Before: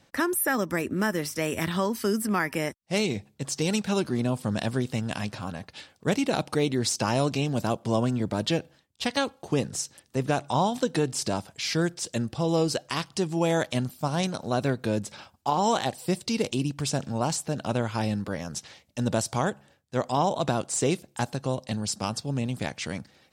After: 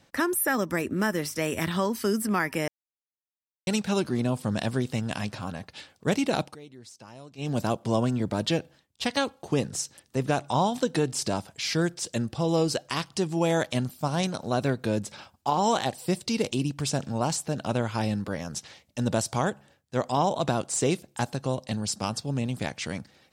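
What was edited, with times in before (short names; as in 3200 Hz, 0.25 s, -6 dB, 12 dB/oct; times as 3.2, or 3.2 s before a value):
2.68–3.67 mute
6.43–7.5 dip -21.5 dB, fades 0.13 s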